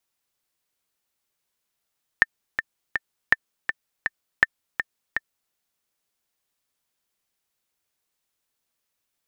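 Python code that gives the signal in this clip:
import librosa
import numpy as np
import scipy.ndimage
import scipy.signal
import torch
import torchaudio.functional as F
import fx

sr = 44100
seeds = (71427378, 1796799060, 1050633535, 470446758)

y = fx.click_track(sr, bpm=163, beats=3, bars=3, hz=1790.0, accent_db=8.5, level_db=-1.5)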